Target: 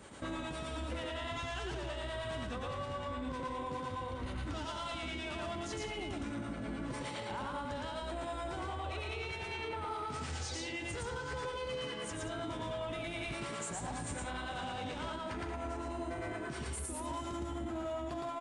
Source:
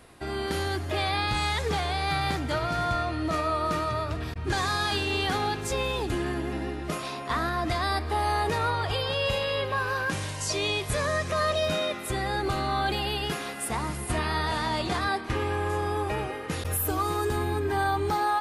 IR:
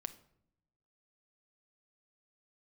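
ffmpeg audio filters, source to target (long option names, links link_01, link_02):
-filter_complex "[0:a]highpass=77,acrossover=split=580[link_01][link_02];[link_01]aeval=exprs='val(0)*(1-0.5/2+0.5/2*cos(2*PI*9.7*n/s))':channel_layout=same[link_03];[link_02]aeval=exprs='val(0)*(1-0.5/2-0.5/2*cos(2*PI*9.7*n/s))':channel_layout=same[link_04];[link_03][link_04]amix=inputs=2:normalize=0,acompressor=threshold=-33dB:ratio=6,asetrate=36028,aresample=44100,atempo=1.22405,asoftclip=type=tanh:threshold=-30.5dB,aresample=22050,aresample=44100,asplit=2[link_05][link_06];[link_06]aecho=0:1:113.7|177.8:0.891|0.316[link_07];[link_05][link_07]amix=inputs=2:normalize=0,alimiter=level_in=10dB:limit=-24dB:level=0:latency=1:release=412,volume=-10dB,volume=2.5dB"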